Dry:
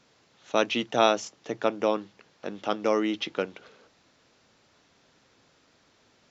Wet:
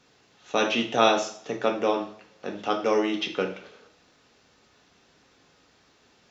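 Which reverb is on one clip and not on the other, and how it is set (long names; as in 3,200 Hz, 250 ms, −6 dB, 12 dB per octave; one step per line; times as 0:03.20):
coupled-rooms reverb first 0.48 s, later 1.6 s, from −27 dB, DRR 1 dB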